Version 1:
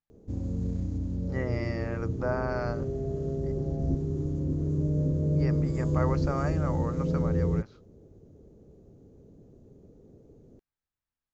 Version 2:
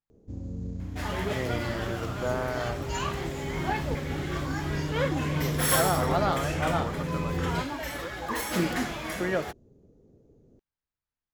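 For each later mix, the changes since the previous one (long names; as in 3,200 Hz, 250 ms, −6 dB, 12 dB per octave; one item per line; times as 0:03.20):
first sound −4.5 dB
second sound: unmuted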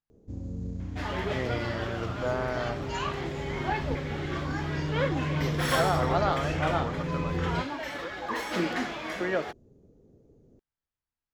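second sound: add three-way crossover with the lows and the highs turned down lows −12 dB, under 200 Hz, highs −16 dB, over 5,800 Hz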